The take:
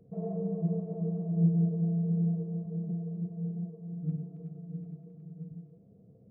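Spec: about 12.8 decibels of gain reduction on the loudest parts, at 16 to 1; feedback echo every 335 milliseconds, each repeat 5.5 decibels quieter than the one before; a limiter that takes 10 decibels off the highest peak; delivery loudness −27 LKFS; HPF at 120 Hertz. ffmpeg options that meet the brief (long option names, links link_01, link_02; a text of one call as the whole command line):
ffmpeg -i in.wav -af "highpass=120,acompressor=threshold=-33dB:ratio=16,alimiter=level_in=14dB:limit=-24dB:level=0:latency=1,volume=-14dB,aecho=1:1:335|670|1005|1340|1675|2010|2345:0.531|0.281|0.149|0.079|0.0419|0.0222|0.0118,volume=16.5dB" out.wav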